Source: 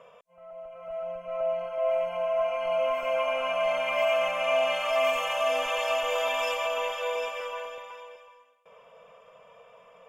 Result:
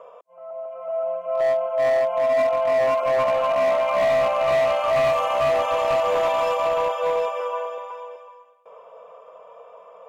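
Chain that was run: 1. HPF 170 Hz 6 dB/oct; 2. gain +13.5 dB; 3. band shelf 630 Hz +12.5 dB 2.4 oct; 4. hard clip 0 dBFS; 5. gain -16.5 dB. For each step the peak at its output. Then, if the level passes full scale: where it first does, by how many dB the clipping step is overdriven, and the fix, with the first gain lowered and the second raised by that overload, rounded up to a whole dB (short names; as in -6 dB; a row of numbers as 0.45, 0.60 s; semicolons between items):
-14.5, -1.0, +9.5, 0.0, -16.5 dBFS; step 3, 9.5 dB; step 2 +3.5 dB, step 5 -6.5 dB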